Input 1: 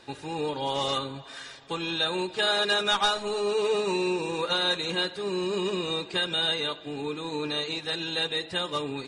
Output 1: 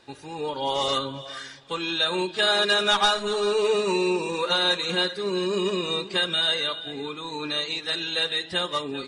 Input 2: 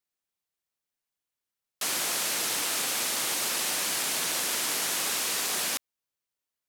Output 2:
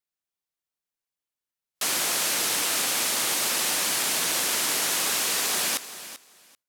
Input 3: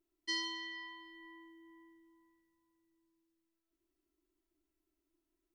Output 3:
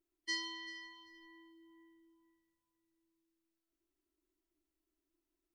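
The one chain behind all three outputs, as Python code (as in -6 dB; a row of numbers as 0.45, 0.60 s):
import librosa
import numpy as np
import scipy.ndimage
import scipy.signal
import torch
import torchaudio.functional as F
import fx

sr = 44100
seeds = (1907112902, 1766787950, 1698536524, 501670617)

y = fx.echo_feedback(x, sr, ms=389, feedback_pct=17, wet_db=-14.0)
y = fx.noise_reduce_blind(y, sr, reduce_db=7)
y = F.gain(torch.from_numpy(y), 3.5).numpy()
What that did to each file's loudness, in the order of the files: +3.5, +3.5, -1.5 LU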